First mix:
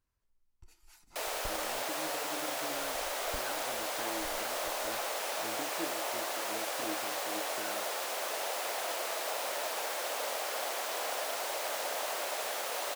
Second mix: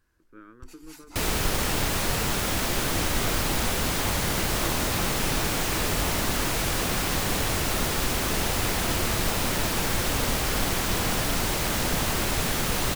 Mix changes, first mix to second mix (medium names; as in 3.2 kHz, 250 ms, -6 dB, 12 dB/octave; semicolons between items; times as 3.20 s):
speech: entry -1.15 s; first sound +11.5 dB; second sound: remove ladder high-pass 510 Hz, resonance 50%